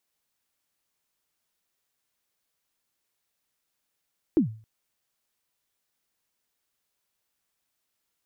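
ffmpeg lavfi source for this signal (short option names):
-f lavfi -i "aevalsrc='0.211*pow(10,-3*t/0.4)*sin(2*PI*(360*0.111/log(110/360)*(exp(log(110/360)*min(t,0.111)/0.111)-1)+110*max(t-0.111,0)))':d=0.27:s=44100"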